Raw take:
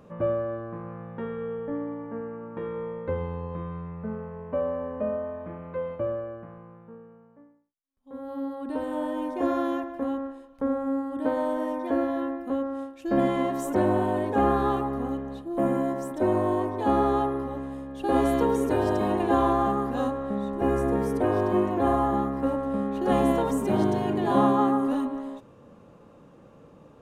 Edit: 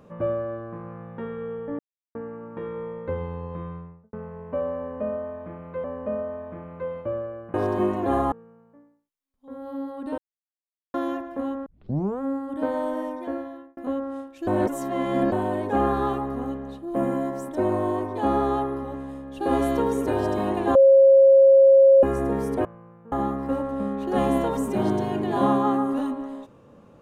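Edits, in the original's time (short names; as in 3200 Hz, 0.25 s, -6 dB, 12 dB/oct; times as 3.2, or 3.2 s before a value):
1.79–2.15 mute
3.65–4.13 studio fade out
4.78–5.84 loop, 2 plays
6.48–6.95 swap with 21.28–22.06
8.81–9.57 mute
10.29 tape start 0.55 s
11.59–12.4 fade out
13.1–13.95 reverse
19.38–20.66 bleep 542 Hz -10 dBFS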